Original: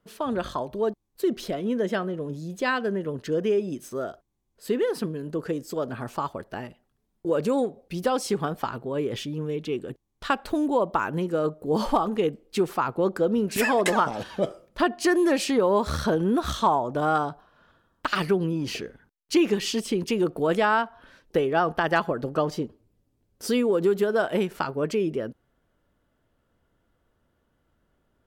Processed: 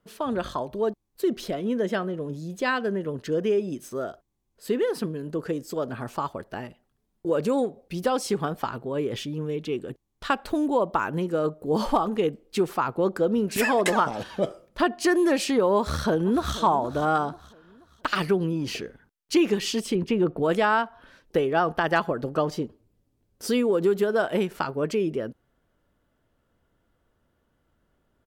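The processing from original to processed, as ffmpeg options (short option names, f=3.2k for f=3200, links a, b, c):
-filter_complex "[0:a]asplit=2[a][b];[b]afade=t=in:st=15.78:d=0.01,afade=t=out:st=16.56:d=0.01,aecho=0:1:480|960|1440|1920:0.177828|0.0711312|0.0284525|0.011381[c];[a][c]amix=inputs=2:normalize=0,asettb=1/sr,asplit=3[d][e][f];[d]atrim=end=19.954[g];[e]atrim=start=19.95:end=20.43,asetpts=PTS-STARTPTS,afade=t=in:d=0.004:c=qsin,afade=t=out:st=0.476:d=0.004:c=qsin,bass=f=250:g=4,treble=f=4k:g=-14[h];[f]atrim=start=20.426[i];[g][h]acrossfade=d=0.004:c1=hsin:c2=qsin[j];[j][i]acrossfade=d=0.004:c1=qsin:c2=hsin"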